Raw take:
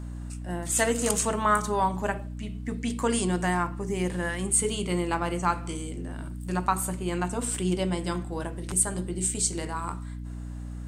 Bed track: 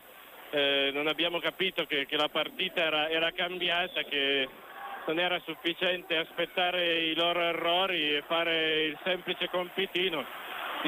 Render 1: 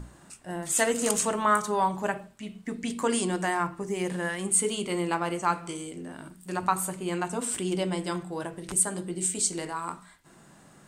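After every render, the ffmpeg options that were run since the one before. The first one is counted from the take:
-af "bandreject=f=60:t=h:w=6,bandreject=f=120:t=h:w=6,bandreject=f=180:t=h:w=6,bandreject=f=240:t=h:w=6,bandreject=f=300:t=h:w=6"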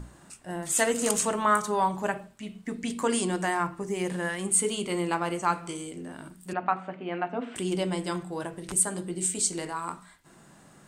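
-filter_complex "[0:a]asettb=1/sr,asplit=3[a][b][c];[a]atrim=end=6.534[d];[b]atrim=start=6.53:end=7.56,asetpts=PTS-STARTPTS,afade=t=in:d=0.004:c=qsin,afade=t=out:st=1.026:d=0.004:c=qsin,highpass=240,equalizer=f=260:t=q:w=4:g=5,equalizer=f=370:t=q:w=4:g=-4,equalizer=f=700:t=q:w=4:g=6,equalizer=f=1k:t=q:w=4:g=-6,lowpass=f=2.8k:w=0.5412,lowpass=f=2.8k:w=1.3066[e];[c]atrim=start=7.556[f];[d][e]acrossfade=d=0.004:c1=hsin:c2=qsin[g];[g][f]acrossfade=d=0.004:c1=qsin:c2=hsin"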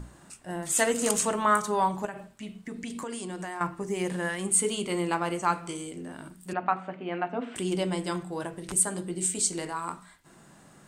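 -filter_complex "[0:a]asettb=1/sr,asplit=3[a][b][c];[a]atrim=end=2.054[d];[b]atrim=start=2.05:end=3.61,asetpts=PTS-STARTPTS,afade=t=in:d=0.004:c=qsin,afade=t=out:st=1.556:d=0.004:c=qsin,acompressor=threshold=-33dB:ratio=5:attack=3.2:release=140:knee=1:detection=peak[e];[c]atrim=start=3.606[f];[d][e]acrossfade=d=0.004:c1=hsin:c2=qsin[g];[g][f]acrossfade=d=0.004:c1=qsin:c2=hsin"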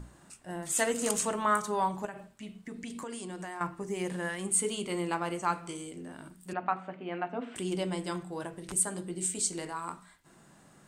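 -af "volume=-4dB"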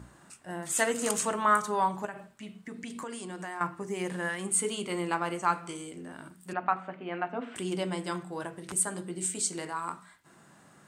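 -af "highpass=75,equalizer=f=1.4k:w=0.94:g=4"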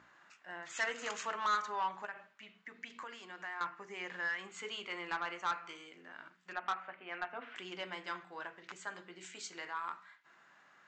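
-af "bandpass=f=1.9k:t=q:w=1.1:csg=0,aresample=16000,asoftclip=type=tanh:threshold=-27.5dB,aresample=44100"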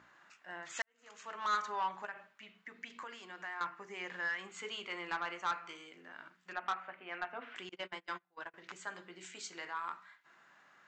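-filter_complex "[0:a]asettb=1/sr,asplit=3[a][b][c];[a]atrim=end=7.694[d];[b]atrim=start=7.69:end=8.54,asetpts=PTS-STARTPTS,afade=t=in:d=0.004:c=qsin,afade=t=out:st=0.846:d=0.004:c=qsin,agate=range=-27dB:threshold=-45dB:ratio=16:release=100:detection=peak[e];[c]atrim=start=8.536[f];[d][e]acrossfade=d=0.004:c1=hsin:c2=qsin[g];[g][f]acrossfade=d=0.004:c1=qsin:c2=hsin,asplit=2[h][i];[h]atrim=end=0.82,asetpts=PTS-STARTPTS,afade=t=out:st=0.816:d=0.004:c=hsin[j];[i]atrim=start=0.82,asetpts=PTS-STARTPTS,afade=t=in:d=0.73:c=qua[k];[j][k]concat=n=2:v=0:a=1"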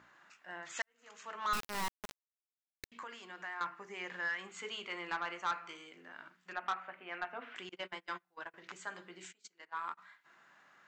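-filter_complex "[0:a]asettb=1/sr,asplit=3[a][b][c];[a]atrim=end=1.534[d];[b]atrim=start=1.53:end=2.92,asetpts=PTS-STARTPTS,afade=t=in:d=0.004:c=qsin,afade=t=out:st=1.386:d=0.004:c=qsin,acrusher=bits=3:dc=4:mix=0:aa=0.000001[e];[c]atrim=start=2.916[f];[d][e]acrossfade=d=0.004:c1=hsin:c2=qsin[g];[g][f]acrossfade=d=0.004:c1=qsin:c2=hsin,asplit=3[h][i][j];[h]afade=t=out:st=9.31:d=0.02[k];[i]agate=range=-27dB:threshold=-43dB:ratio=16:release=100:detection=peak,afade=t=in:st=9.31:d=0.02,afade=t=out:st=9.97:d=0.02[l];[j]afade=t=in:st=9.97:d=0.02[m];[k][l][m]amix=inputs=3:normalize=0"

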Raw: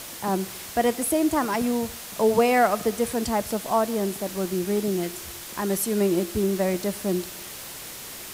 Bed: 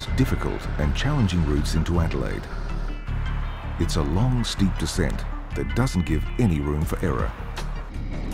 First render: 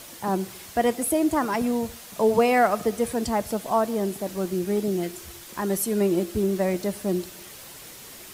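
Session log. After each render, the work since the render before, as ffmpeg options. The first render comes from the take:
-af "afftdn=nr=6:nf=-39"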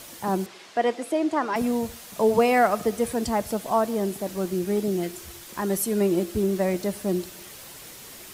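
-filter_complex "[0:a]asettb=1/sr,asplit=3[a][b][c];[a]atrim=end=0.464[d];[b]atrim=start=0.46:end=1.56,asetpts=PTS-STARTPTS,afade=t=in:d=0.004:c=qsin,afade=t=out:st=1.096:d=0.004:c=qsin,highpass=300,lowpass=4.8k[e];[c]atrim=start=1.556[f];[d][e]acrossfade=d=0.004:c1=hsin:c2=qsin[g];[g][f]acrossfade=d=0.004:c1=qsin:c2=hsin"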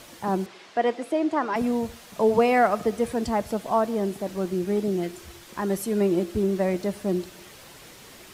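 -af "highshelf=f=6.8k:g=-11"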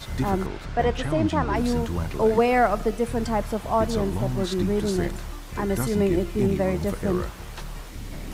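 -filter_complex "[1:a]volume=-6dB[a];[0:a][a]amix=inputs=2:normalize=0"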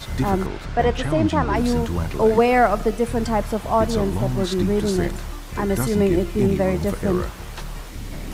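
-af "volume=3.5dB"

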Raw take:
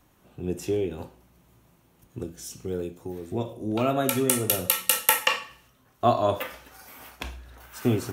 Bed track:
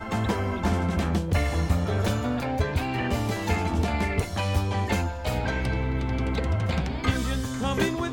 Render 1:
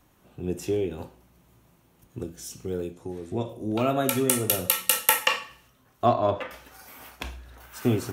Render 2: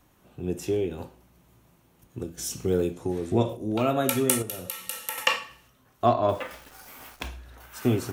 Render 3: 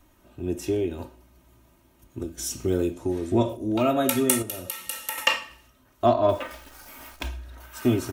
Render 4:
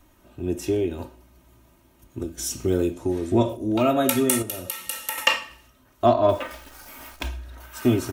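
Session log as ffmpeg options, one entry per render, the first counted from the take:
-filter_complex "[0:a]asettb=1/sr,asplit=3[a][b][c];[a]atrim=end=2.934[d];[b]atrim=start=2.93:end=3.49,asetpts=PTS-STARTPTS,afade=t=in:d=0.004:c=qsin,afade=t=out:st=0.556:d=0.004:c=qsin,lowpass=f=11k:w=0.5412,lowpass=f=11k:w=1.3066[e];[c]atrim=start=3.486[f];[d][e]acrossfade=d=0.004:c1=hsin:c2=qsin[g];[g][f]acrossfade=d=0.004:c1=qsin:c2=hsin,asettb=1/sr,asplit=3[h][i][j];[h]atrim=end=6.064[k];[i]atrim=start=6.06:end=6.51,asetpts=PTS-STARTPTS,afade=t=in:d=0.004:c=qsin,afade=t=out:st=0.446:d=0.004:c=qsin,adynamicsmooth=sensitivity=1:basefreq=2.9k[l];[j]atrim=start=6.506[m];[k][l]acrossfade=d=0.004:c1=hsin:c2=qsin[n];[n][m]acrossfade=d=0.004:c1=qsin:c2=hsin"
-filter_complex "[0:a]asplit=3[a][b][c];[a]afade=t=out:st=2.37:d=0.02[d];[b]acontrast=67,afade=t=in:st=2.37:d=0.02,afade=t=out:st=3.55:d=0.02[e];[c]afade=t=in:st=3.55:d=0.02[f];[d][e][f]amix=inputs=3:normalize=0,asettb=1/sr,asplit=3[g][h][i];[g]atrim=end=4.424[j];[h]atrim=start=4.42:end=5.18,asetpts=PTS-STARTPTS,afade=t=in:d=0.004:c=qsin,afade=t=out:st=0.756:d=0.004:c=qsin,acompressor=threshold=-39dB:ratio=2:attack=3.2:release=140:knee=1:detection=peak[k];[i]atrim=start=5.176[l];[j][k]acrossfade=d=0.004:c1=hsin:c2=qsin[m];[m][l]acrossfade=d=0.004:c1=qsin:c2=hsin,asettb=1/sr,asplit=3[n][o][p];[n]atrim=end=6.294[q];[o]atrim=start=6.29:end=7.28,asetpts=PTS-STARTPTS,afade=t=in:d=0.004:c=qsin,afade=t=out:st=0.986:d=0.004:c=qsin,acrusher=bits=9:dc=4:mix=0:aa=0.000001[r];[p]atrim=start=7.276[s];[q][r]acrossfade=d=0.004:c1=hsin:c2=qsin[t];[t][s]acrossfade=d=0.004:c1=qsin:c2=hsin"
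-af "lowshelf=f=76:g=6,aecho=1:1:3.2:0.56"
-af "volume=2dB,alimiter=limit=-3dB:level=0:latency=1"

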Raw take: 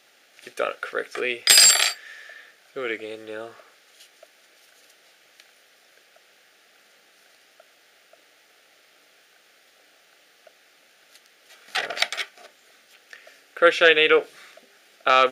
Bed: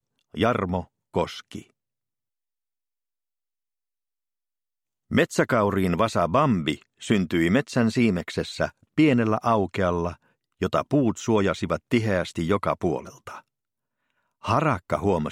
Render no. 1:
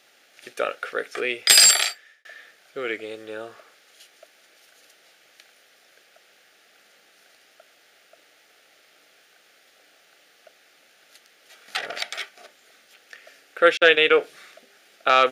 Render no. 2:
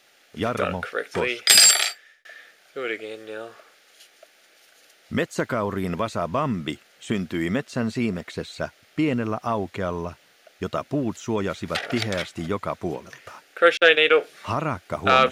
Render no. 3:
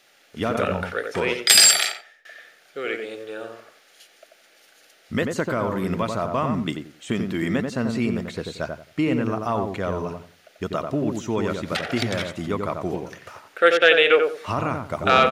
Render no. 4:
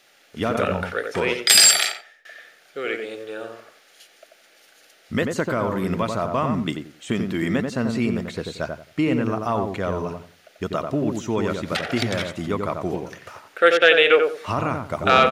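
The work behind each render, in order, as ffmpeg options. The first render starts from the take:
-filter_complex "[0:a]asplit=3[a][b][c];[a]afade=t=out:st=11.76:d=0.02[d];[b]acompressor=threshold=-28dB:ratio=2:attack=3.2:release=140:knee=1:detection=peak,afade=t=in:st=11.76:d=0.02,afade=t=out:st=12.21:d=0.02[e];[c]afade=t=in:st=12.21:d=0.02[f];[d][e][f]amix=inputs=3:normalize=0,asettb=1/sr,asplit=3[g][h][i];[g]atrim=end=13.774[j];[h]atrim=start=13.77:end=14.2,asetpts=PTS-STARTPTS,afade=t=in:d=0.004:c=qsin,afade=t=out:st=0.426:d=0.004:c=qsin,agate=range=-47dB:threshold=-23dB:ratio=16:release=100:detection=peak[k];[i]atrim=start=14.196[l];[j][k]acrossfade=d=0.004:c1=hsin:c2=qsin[m];[m][l]acrossfade=d=0.004:c1=qsin:c2=hsin,asplit=2[n][o];[n]atrim=end=2.25,asetpts=PTS-STARTPTS,afade=t=out:st=1.7:d=0.55[p];[o]atrim=start=2.25,asetpts=PTS-STARTPTS,afade=t=in:d=0.004:c=hsin[q];[p][q]concat=n=2:v=0:a=1"
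-filter_complex "[1:a]volume=-4dB[a];[0:a][a]amix=inputs=2:normalize=0"
-filter_complex "[0:a]asplit=2[a][b];[b]adelay=89,lowpass=f=1.2k:p=1,volume=-3.5dB,asplit=2[c][d];[d]adelay=89,lowpass=f=1.2k:p=1,volume=0.26,asplit=2[e][f];[f]adelay=89,lowpass=f=1.2k:p=1,volume=0.26,asplit=2[g][h];[h]adelay=89,lowpass=f=1.2k:p=1,volume=0.26[i];[a][c][e][g][i]amix=inputs=5:normalize=0"
-af "volume=1dB,alimiter=limit=-2dB:level=0:latency=1"

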